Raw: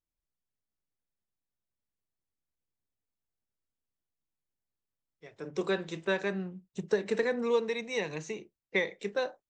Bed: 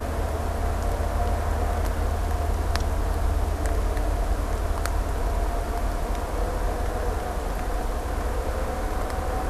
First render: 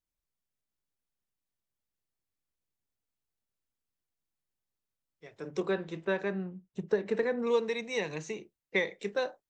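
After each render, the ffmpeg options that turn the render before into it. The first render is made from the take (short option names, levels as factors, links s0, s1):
-filter_complex "[0:a]asettb=1/sr,asplit=3[s0][s1][s2];[s0]atrim=end=5.604[s3];[s1]atrim=start=5.6:end=7.47,asetpts=PTS-STARTPTS,afade=t=in:d=0.004:c=qsin,afade=t=out:st=1.866:d=0.004:c=qsin,lowpass=f=1900:p=1[s4];[s2]atrim=start=7.466[s5];[s3][s4]acrossfade=d=0.004:c1=hsin:c2=qsin[s6];[s6][s5]acrossfade=d=0.004:c1=qsin:c2=hsin"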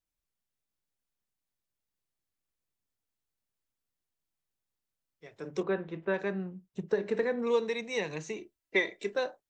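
-filter_complex "[0:a]asettb=1/sr,asplit=3[s0][s1][s2];[s0]atrim=end=5.634[s3];[s1]atrim=start=5.63:end=6.14,asetpts=PTS-STARTPTS,afade=t=in:d=0.004:c=qsin,afade=t=out:st=0.506:d=0.004:c=qsin,lowpass=2500[s4];[s2]atrim=start=6.136[s5];[s3][s4]acrossfade=d=0.004:c1=hsin:c2=qsin[s6];[s6][s5]acrossfade=d=0.004:c1=qsin:c2=hsin,asettb=1/sr,asplit=3[s7][s8][s9];[s7]atrim=end=6.864[s10];[s8]atrim=start=6.86:end=7.67,asetpts=PTS-STARTPTS,afade=t=in:d=0.004:c=qsin,afade=t=out:st=0.806:d=0.004:c=qsin,bandreject=f=206.5:t=h:w=4,bandreject=f=413:t=h:w=4,bandreject=f=619.5:t=h:w=4,bandreject=f=826:t=h:w=4,bandreject=f=1032.5:t=h:w=4,bandreject=f=1239:t=h:w=4,bandreject=f=1445.5:t=h:w=4,bandreject=f=1652:t=h:w=4,bandreject=f=1858.5:t=h:w=4,bandreject=f=2065:t=h:w=4,bandreject=f=2271.5:t=h:w=4,bandreject=f=2478:t=h:w=4,bandreject=f=2684.5:t=h:w=4,bandreject=f=2891:t=h:w=4,bandreject=f=3097.5:t=h:w=4,bandreject=f=3304:t=h:w=4,bandreject=f=3510.5:t=h:w=4,bandreject=f=3717:t=h:w=4,bandreject=f=3923.5:t=h:w=4,bandreject=f=4130:t=h:w=4,bandreject=f=4336.5:t=h:w=4,bandreject=f=4543:t=h:w=4,bandreject=f=4749.5:t=h:w=4,bandreject=f=4956:t=h:w=4,bandreject=f=5162.5:t=h:w=4,bandreject=f=5369:t=h:w=4,bandreject=f=5575.5:t=h:w=4,bandreject=f=5782:t=h:w=4,bandreject=f=5988.5:t=h:w=4,bandreject=f=6195:t=h:w=4,bandreject=f=6401.5:t=h:w=4,bandreject=f=6608:t=h:w=4,bandreject=f=6814.5:t=h:w=4,bandreject=f=7021:t=h:w=4,bandreject=f=7227.5:t=h:w=4[s11];[s9]atrim=start=7.666[s12];[s10][s11]acrossfade=d=0.004:c1=hsin:c2=qsin[s13];[s13][s12]acrossfade=d=0.004:c1=qsin:c2=hsin,asettb=1/sr,asplit=3[s14][s15][s16];[s14]atrim=end=8.364[s17];[s15]atrim=start=8.36:end=9.15,asetpts=PTS-STARTPTS,afade=t=in:d=0.004:c=qsin,afade=t=out:st=0.786:d=0.004:c=qsin,aecho=1:1:3:0.61,atrim=end_sample=34839[s18];[s16]atrim=start=9.146[s19];[s17][s18]acrossfade=d=0.004:c1=hsin:c2=qsin[s20];[s20][s19]acrossfade=d=0.004:c1=qsin:c2=hsin"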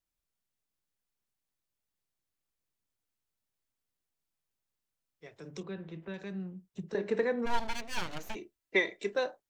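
-filter_complex "[0:a]asettb=1/sr,asplit=3[s0][s1][s2];[s0]atrim=end=5.354[s3];[s1]atrim=start=5.35:end=6.95,asetpts=PTS-STARTPTS,afade=t=in:d=0.004:c=qsin,afade=t=out:st=1.596:d=0.004:c=qsin,acrossover=split=220|3000[s4][s5][s6];[s5]acompressor=threshold=0.00355:ratio=3:attack=3.2:release=140:knee=2.83:detection=peak[s7];[s4][s7][s6]amix=inputs=3:normalize=0[s8];[s2]atrim=start=6.946[s9];[s3][s8]acrossfade=d=0.004:c1=hsin:c2=qsin[s10];[s10][s9]acrossfade=d=0.004:c1=qsin:c2=hsin,asplit=3[s11][s12][s13];[s11]afade=t=out:st=7.45:d=0.02[s14];[s12]aeval=exprs='abs(val(0))':c=same,afade=t=in:st=7.45:d=0.02,afade=t=out:st=8.34:d=0.02[s15];[s13]afade=t=in:st=8.34:d=0.02[s16];[s14][s15][s16]amix=inputs=3:normalize=0"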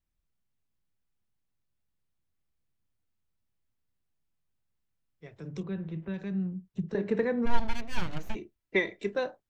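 -af "bass=f=250:g=11,treble=f=4000:g=-6"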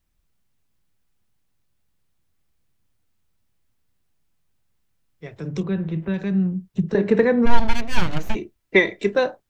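-af "volume=3.55,alimiter=limit=0.891:level=0:latency=1"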